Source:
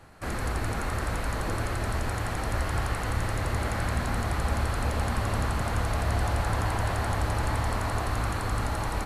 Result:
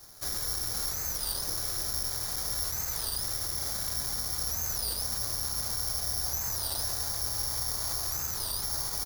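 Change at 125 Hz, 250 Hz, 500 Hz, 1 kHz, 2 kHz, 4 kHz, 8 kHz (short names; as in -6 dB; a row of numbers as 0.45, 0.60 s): -14.5, -15.5, -12.5, -13.0, -12.5, +7.0, +10.0 dB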